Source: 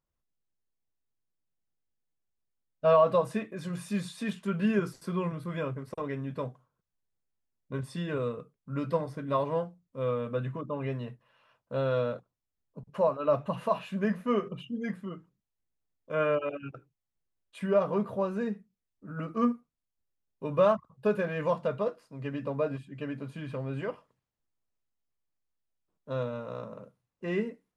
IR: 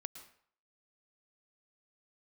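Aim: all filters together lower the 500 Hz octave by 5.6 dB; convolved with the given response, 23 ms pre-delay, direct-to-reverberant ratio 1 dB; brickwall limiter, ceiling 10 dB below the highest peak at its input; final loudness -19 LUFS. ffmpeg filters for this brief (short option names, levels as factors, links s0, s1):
-filter_complex "[0:a]equalizer=f=500:t=o:g=-7,alimiter=level_in=1.12:limit=0.0631:level=0:latency=1,volume=0.891,asplit=2[s0][s1];[1:a]atrim=start_sample=2205,adelay=23[s2];[s1][s2]afir=irnorm=-1:irlink=0,volume=1.33[s3];[s0][s3]amix=inputs=2:normalize=0,volume=5.96"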